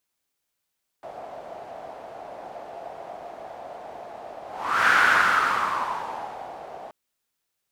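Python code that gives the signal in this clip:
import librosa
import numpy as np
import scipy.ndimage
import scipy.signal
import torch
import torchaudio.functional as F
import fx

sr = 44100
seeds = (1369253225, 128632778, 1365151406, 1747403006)

y = fx.whoosh(sr, seeds[0], length_s=5.88, peak_s=3.87, rise_s=0.48, fall_s=1.93, ends_hz=690.0, peak_hz=1500.0, q=5.1, swell_db=21.0)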